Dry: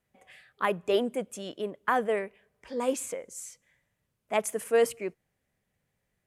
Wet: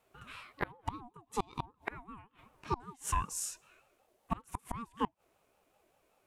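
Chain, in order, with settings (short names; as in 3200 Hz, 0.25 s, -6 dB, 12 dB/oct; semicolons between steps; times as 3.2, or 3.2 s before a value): harmonic-percussive split percussive -14 dB; flipped gate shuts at -30 dBFS, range -31 dB; ring modulator with a swept carrier 590 Hz, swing 20%, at 5.2 Hz; gain +13 dB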